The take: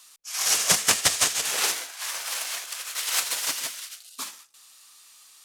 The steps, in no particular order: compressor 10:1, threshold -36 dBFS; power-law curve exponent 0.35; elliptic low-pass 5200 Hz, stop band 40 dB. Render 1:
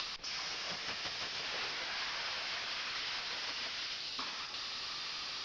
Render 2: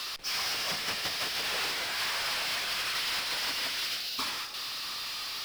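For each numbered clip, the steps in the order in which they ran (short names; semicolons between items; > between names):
power-law curve > compressor > elliptic low-pass; compressor > elliptic low-pass > power-law curve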